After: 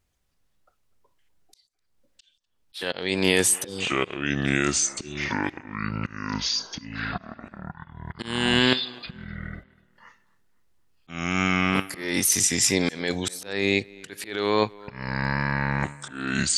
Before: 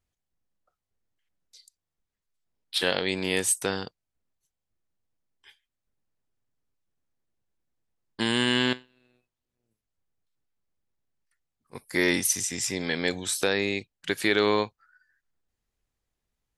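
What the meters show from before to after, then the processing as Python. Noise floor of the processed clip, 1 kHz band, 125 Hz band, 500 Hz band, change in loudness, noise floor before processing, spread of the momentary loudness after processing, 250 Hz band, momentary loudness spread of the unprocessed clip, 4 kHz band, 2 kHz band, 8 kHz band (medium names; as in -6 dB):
-71 dBFS, +6.0 dB, +10.0 dB, +1.5 dB, +1.5 dB, under -85 dBFS, 18 LU, +5.0 dB, 9 LU, +3.5 dB, +4.0 dB, +6.0 dB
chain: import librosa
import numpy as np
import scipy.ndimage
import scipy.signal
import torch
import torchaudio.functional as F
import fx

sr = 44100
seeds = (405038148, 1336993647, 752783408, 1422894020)

p1 = fx.spec_repair(x, sr, seeds[0], start_s=3.51, length_s=0.31, low_hz=560.0, high_hz=3000.0, source='both')
p2 = fx.over_compress(p1, sr, threshold_db=-27.0, ratio=-0.5)
p3 = p1 + (p2 * 10.0 ** (2.0 / 20.0))
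p4 = fx.echo_pitch(p3, sr, ms=144, semitones=-5, count=3, db_per_echo=-3.0)
p5 = fx.auto_swell(p4, sr, attack_ms=350.0)
p6 = p5 + fx.echo_tape(p5, sr, ms=252, feedback_pct=49, wet_db=-22.0, lp_hz=3300.0, drive_db=5.0, wow_cents=32, dry=0)
y = fx.wow_flutter(p6, sr, seeds[1], rate_hz=2.1, depth_cents=28.0)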